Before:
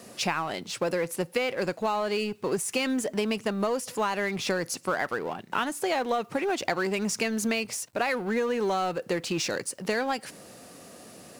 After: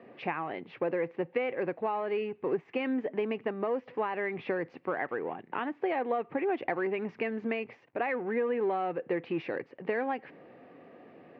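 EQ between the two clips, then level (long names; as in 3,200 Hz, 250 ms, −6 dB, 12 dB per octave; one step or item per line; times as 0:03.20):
high-frequency loss of the air 140 metres
loudspeaker in its box 180–2,200 Hz, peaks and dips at 200 Hz −8 dB, 610 Hz −5 dB, 1,000 Hz −4 dB, 1,400 Hz −9 dB
0.0 dB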